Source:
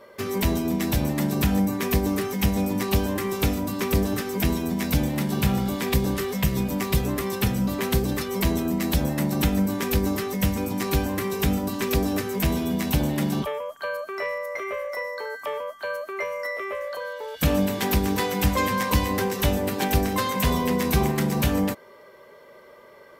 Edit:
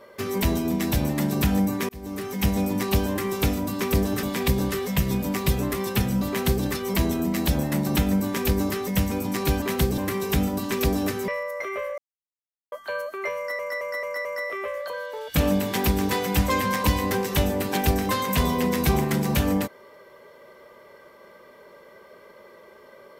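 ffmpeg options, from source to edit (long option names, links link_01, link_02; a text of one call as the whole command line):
ffmpeg -i in.wav -filter_complex "[0:a]asplit=12[link_01][link_02][link_03][link_04][link_05][link_06][link_07][link_08][link_09][link_10][link_11][link_12];[link_01]atrim=end=1.89,asetpts=PTS-STARTPTS,afade=type=out:start_time=1.886:duration=0.004:curve=hsin[link_13];[link_02]atrim=start=1.89:end=4.232,asetpts=PTS-STARTPTS,afade=type=in:duration=0.6[link_14];[link_03]atrim=start=5.688:end=11.082[link_15];[link_04]atrim=start=7.748:end=8.112[link_16];[link_05]atrim=start=11.078:end=12.382[link_17];[link_06]atrim=start=14.228:end=14.93,asetpts=PTS-STARTPTS,afade=type=out:start_time=0.698:duration=0.004:curve=hsin[link_18];[link_07]atrim=start=14.93:end=15.67,asetpts=PTS-STARTPTS,volume=0[link_19];[link_08]atrim=start=15.67:end=16.542,asetpts=PTS-STARTPTS,afade=type=in:duration=0.004:curve=hsin[link_20];[link_09]atrim=start=16.318:end=16.542[link_21];[link_10]atrim=start=16.318:end=16.542[link_22];[link_11]atrim=start=16.318:end=16.542[link_23];[link_12]atrim=start=16.318[link_24];[link_13][link_14]concat=n=2:v=0:a=1[link_25];[link_25][link_15]acrossfade=duration=0.004:curve1=hsin:curve2=hsin[link_26];[link_26][link_16]acrossfade=duration=0.004:curve1=hsin:curve2=hsin[link_27];[link_27][link_17]acrossfade=duration=0.004:curve1=hsin:curve2=hsin[link_28];[link_18][link_19][link_20]concat=n=3:v=0:a=1[link_29];[link_28][link_29]acrossfade=duration=0.004:curve1=hsin:curve2=hsin[link_30];[link_30][link_21]acrossfade=duration=0.004:curve1=hsin:curve2=hsin[link_31];[link_31][link_22]acrossfade=duration=0.004:curve1=hsin:curve2=hsin[link_32];[link_32][link_23]acrossfade=duration=0.004:curve1=hsin:curve2=hsin[link_33];[link_33][link_24]acrossfade=duration=0.004:curve1=hsin:curve2=hsin" out.wav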